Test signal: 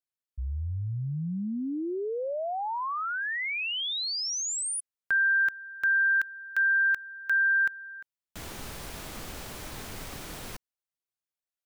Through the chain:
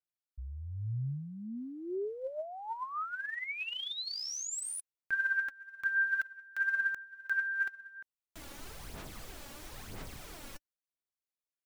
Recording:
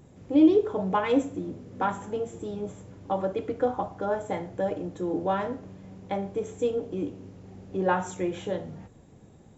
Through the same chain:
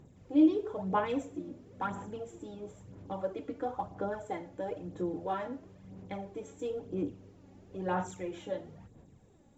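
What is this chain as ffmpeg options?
-af "aphaser=in_gain=1:out_gain=1:delay=3.6:decay=0.52:speed=1:type=sinusoidal,volume=-9dB"

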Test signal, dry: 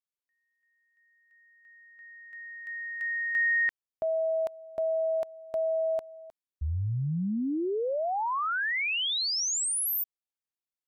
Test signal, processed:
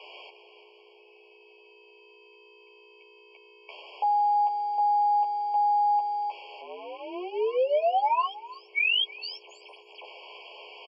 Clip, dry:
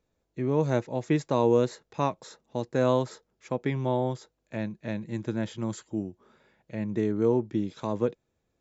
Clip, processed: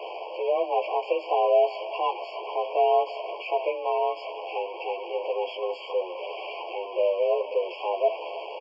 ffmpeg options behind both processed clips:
-filter_complex "[0:a]aeval=exprs='val(0)+0.5*0.0473*sgn(val(0))':c=same,aeval=exprs='val(0)+0.00631*(sin(2*PI*60*n/s)+sin(2*PI*2*60*n/s)/2+sin(2*PI*3*60*n/s)/3+sin(2*PI*4*60*n/s)/4+sin(2*PI*5*60*n/s)/5)':c=same,asplit=2[a][b];[b]adelay=12,volume=-2dB[c];[a][c]amix=inputs=2:normalize=0,asplit=2[d][e];[e]adelay=320.7,volume=-18dB,highshelf=f=4k:g=-7.22[f];[d][f]amix=inputs=2:normalize=0,highpass=f=260:t=q:w=0.5412,highpass=f=260:t=q:w=1.307,lowpass=f=3.6k:t=q:w=0.5176,lowpass=f=3.6k:t=q:w=0.7071,lowpass=f=3.6k:t=q:w=1.932,afreqshift=180,afftfilt=real='re*eq(mod(floor(b*sr/1024/1100),2),0)':imag='im*eq(mod(floor(b*sr/1024/1100),2),0)':win_size=1024:overlap=0.75,volume=-1dB"

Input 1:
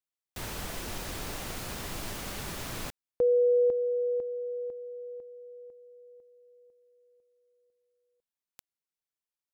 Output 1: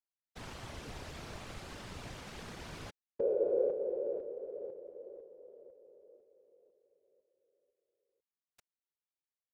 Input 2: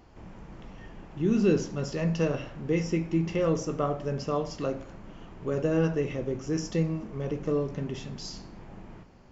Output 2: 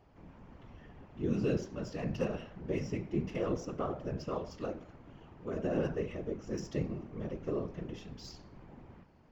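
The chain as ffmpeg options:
-af "adynamicsmooth=sensitivity=8:basefreq=5.5k,afftfilt=real='hypot(re,im)*cos(2*PI*random(0))':imag='hypot(re,im)*sin(2*PI*random(1))':win_size=512:overlap=0.75,volume=-1.5dB"

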